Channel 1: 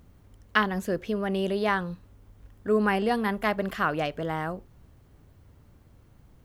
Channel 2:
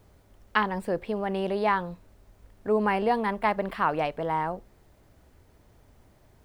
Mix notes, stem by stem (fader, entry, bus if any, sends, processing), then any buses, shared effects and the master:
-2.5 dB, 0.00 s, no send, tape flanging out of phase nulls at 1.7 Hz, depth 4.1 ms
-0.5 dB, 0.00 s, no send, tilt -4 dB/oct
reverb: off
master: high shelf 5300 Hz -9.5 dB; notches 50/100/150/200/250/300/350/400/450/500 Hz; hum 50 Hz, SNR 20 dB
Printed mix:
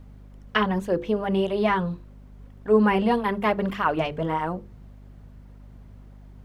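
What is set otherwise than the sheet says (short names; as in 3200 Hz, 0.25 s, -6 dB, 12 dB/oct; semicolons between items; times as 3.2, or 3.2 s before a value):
stem 1 -2.5 dB -> +4.5 dB; stem 2: missing tilt -4 dB/oct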